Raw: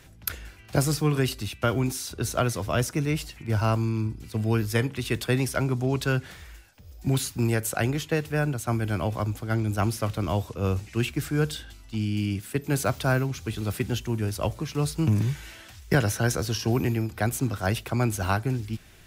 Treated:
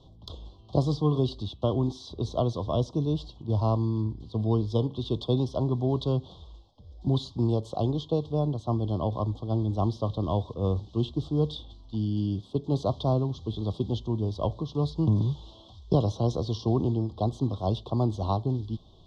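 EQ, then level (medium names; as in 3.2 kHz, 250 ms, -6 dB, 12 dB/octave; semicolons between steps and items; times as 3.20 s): Chebyshev band-stop 1.1–3.3 kHz, order 4; Chebyshev low-pass 3.8 kHz, order 3; 0.0 dB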